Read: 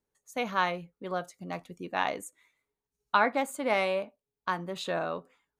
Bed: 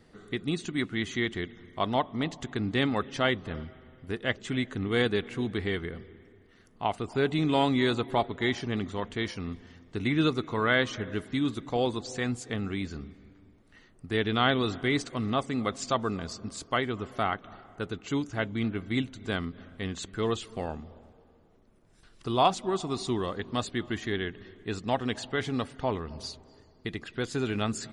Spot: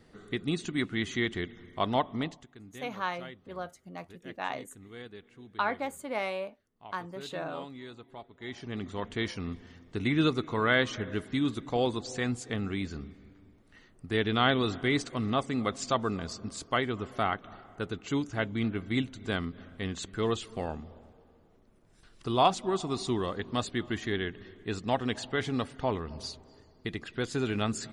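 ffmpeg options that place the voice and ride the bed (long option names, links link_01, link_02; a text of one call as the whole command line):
ffmpeg -i stem1.wav -i stem2.wav -filter_complex "[0:a]adelay=2450,volume=-5.5dB[link_01];[1:a]volume=18.5dB,afade=type=out:start_time=2.15:duration=0.31:silence=0.112202,afade=type=in:start_time=8.36:duration=0.82:silence=0.112202[link_02];[link_01][link_02]amix=inputs=2:normalize=0" out.wav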